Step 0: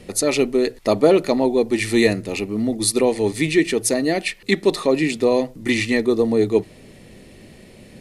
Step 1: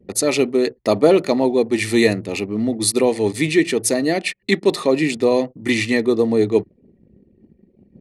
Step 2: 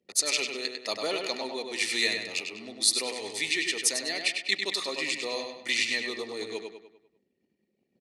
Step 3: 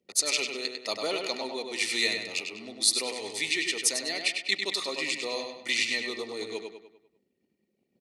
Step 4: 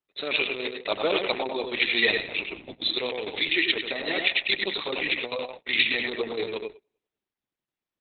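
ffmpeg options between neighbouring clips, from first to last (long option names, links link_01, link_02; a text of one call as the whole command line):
ffmpeg -i in.wav -af "highpass=frequency=64:width=0.5412,highpass=frequency=64:width=1.3066,anlmdn=2.51,volume=1dB" out.wav
ffmpeg -i in.wav -filter_complex "[0:a]bandpass=frequency=4800:width_type=q:width=0.95:csg=0,asplit=2[link_01][link_02];[link_02]adelay=99,lowpass=frequency=4800:poles=1,volume=-4.5dB,asplit=2[link_03][link_04];[link_04]adelay=99,lowpass=frequency=4800:poles=1,volume=0.47,asplit=2[link_05][link_06];[link_06]adelay=99,lowpass=frequency=4800:poles=1,volume=0.47,asplit=2[link_07][link_08];[link_08]adelay=99,lowpass=frequency=4800:poles=1,volume=0.47,asplit=2[link_09][link_10];[link_10]adelay=99,lowpass=frequency=4800:poles=1,volume=0.47,asplit=2[link_11][link_12];[link_12]adelay=99,lowpass=frequency=4800:poles=1,volume=0.47[link_13];[link_03][link_05][link_07][link_09][link_11][link_13]amix=inputs=6:normalize=0[link_14];[link_01][link_14]amix=inputs=2:normalize=0" out.wav
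ffmpeg -i in.wav -af "bandreject=frequency=1700:width=10" out.wav
ffmpeg -i in.wav -af "agate=range=-31dB:threshold=-41dB:ratio=16:detection=peak,volume=7.5dB" -ar 48000 -c:a libopus -b:a 6k out.opus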